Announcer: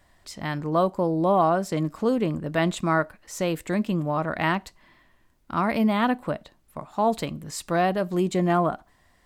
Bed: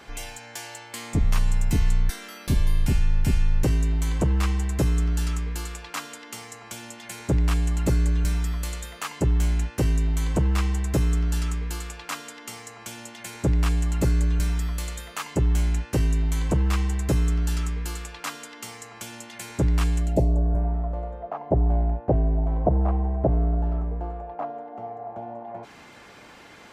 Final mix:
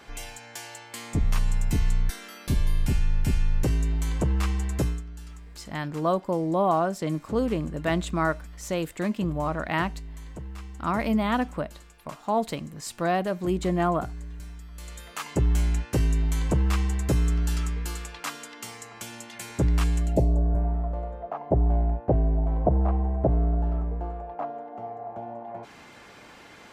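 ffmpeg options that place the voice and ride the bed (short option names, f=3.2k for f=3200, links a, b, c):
-filter_complex "[0:a]adelay=5300,volume=-2.5dB[a];[1:a]volume=13dB,afade=t=out:st=4.81:d=0.22:silence=0.199526,afade=t=in:st=14.7:d=0.6:silence=0.16788[b];[a][b]amix=inputs=2:normalize=0"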